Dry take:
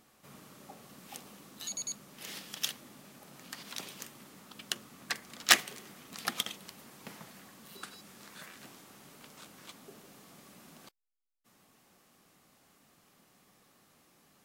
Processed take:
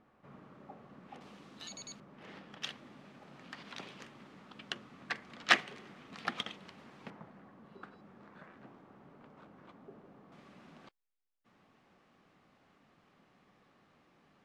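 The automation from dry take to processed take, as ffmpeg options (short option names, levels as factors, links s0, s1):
-af "asetnsamples=n=441:p=0,asendcmd='1.21 lowpass f 3600;2 lowpass f 1500;2.62 lowpass f 2800;7.1 lowpass f 1200;10.32 lowpass f 2700',lowpass=1600"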